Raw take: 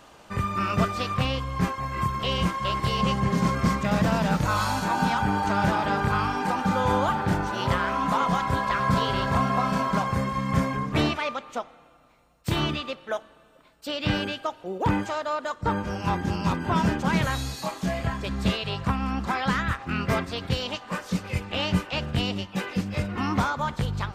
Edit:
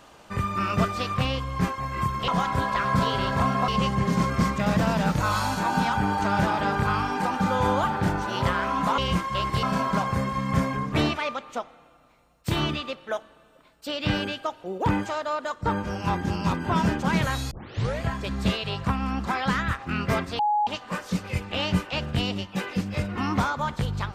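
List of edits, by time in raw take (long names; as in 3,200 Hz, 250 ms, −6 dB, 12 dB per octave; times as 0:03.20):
0:02.28–0:02.93: swap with 0:08.23–0:09.63
0:17.51: tape start 0.50 s
0:20.39–0:20.67: beep over 837 Hz −19.5 dBFS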